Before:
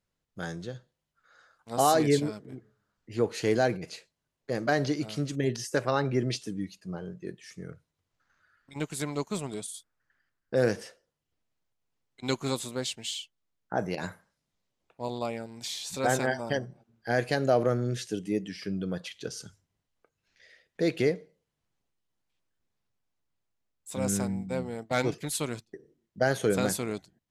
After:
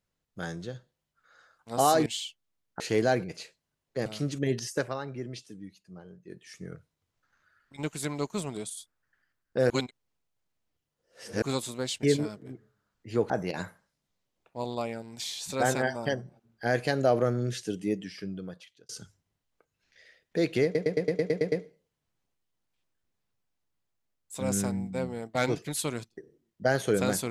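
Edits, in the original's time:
2.06–3.33 swap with 13–13.74
4.59–5.03 cut
5.69–7.49 dip -10 dB, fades 0.27 s
10.67–12.39 reverse
18.35–19.33 fade out
21.08 stutter 0.11 s, 9 plays

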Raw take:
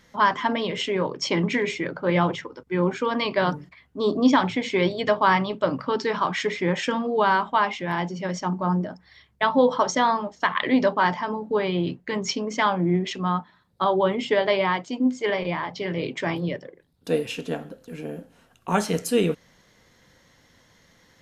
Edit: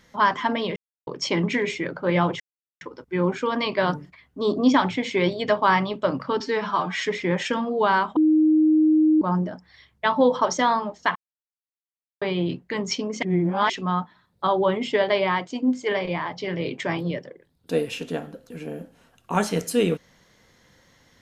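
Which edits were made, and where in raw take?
0.76–1.07 mute
2.4 insert silence 0.41 s
5.99–6.42 stretch 1.5×
7.54–8.59 bleep 311 Hz -14 dBFS
10.53–11.59 mute
12.6–13.07 reverse

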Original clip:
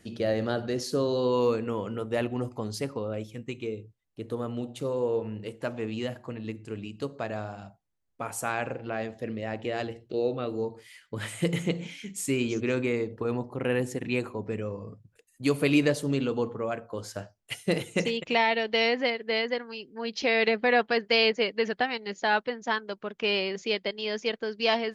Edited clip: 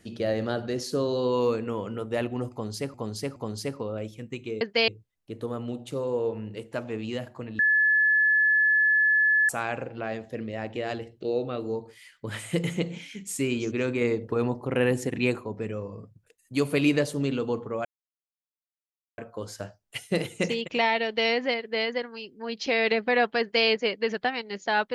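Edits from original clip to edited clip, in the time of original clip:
2.52–2.94 loop, 3 plays
6.48–8.38 bleep 1720 Hz -18 dBFS
12.9–14.25 gain +3.5 dB
16.74 insert silence 1.33 s
20.96–21.23 copy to 3.77

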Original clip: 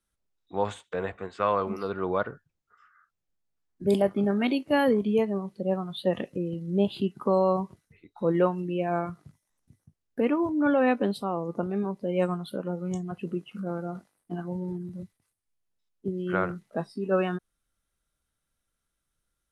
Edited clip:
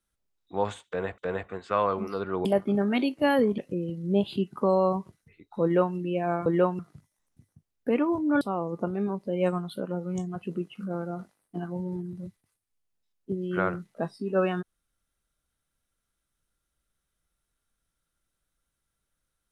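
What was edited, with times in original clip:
0.87–1.18 loop, 2 plays
2.14–3.94 cut
5.07–6.22 cut
8.27–8.6 copy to 9.1
10.72–11.17 cut

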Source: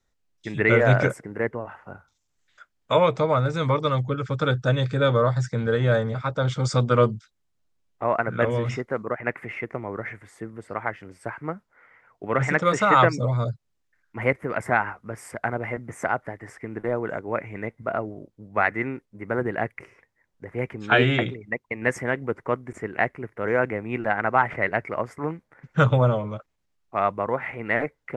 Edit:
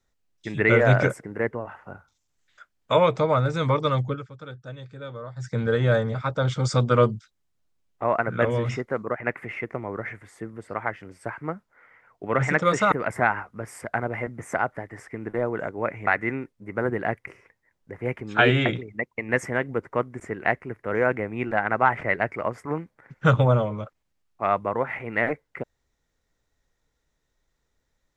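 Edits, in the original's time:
4.07–5.56 dip -17 dB, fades 0.20 s
12.92–14.42 cut
17.57–18.6 cut

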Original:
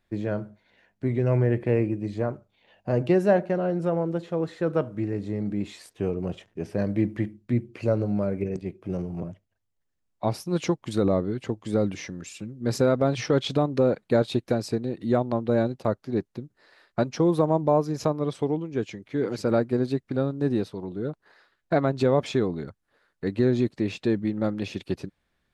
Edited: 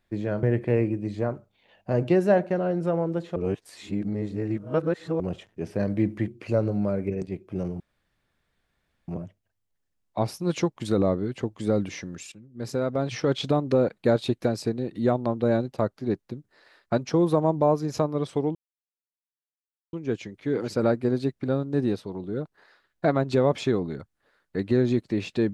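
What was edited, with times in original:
0.43–1.42 cut
4.35–6.19 reverse
7.27–7.62 cut
9.14 insert room tone 1.28 s
12.38–13.59 fade in, from -14 dB
18.61 insert silence 1.38 s

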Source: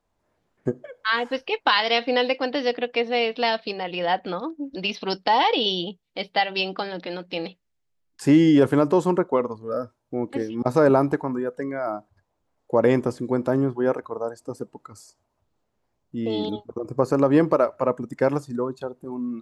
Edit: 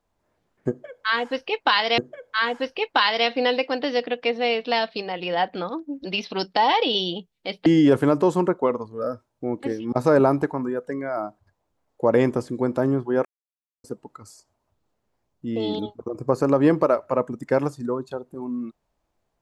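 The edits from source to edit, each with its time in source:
0.69–1.98 loop, 2 plays
6.37–8.36 cut
13.95–14.54 mute

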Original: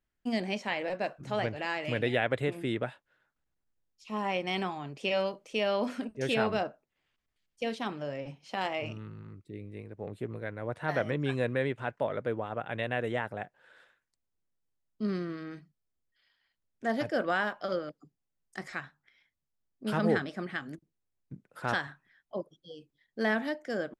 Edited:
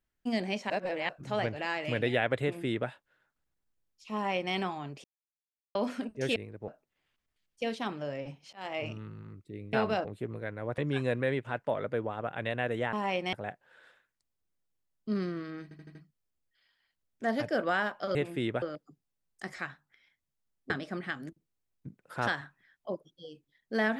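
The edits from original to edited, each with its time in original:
0.7–1.09 reverse
2.42–2.89 copy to 17.76
4.14–4.54 copy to 13.26
5.04–5.75 mute
6.36–6.68 swap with 9.73–10.05
8.53–8.8 fade in
10.78–11.11 cut
15.56 stutter 0.08 s, 5 plays
19.84–20.16 cut

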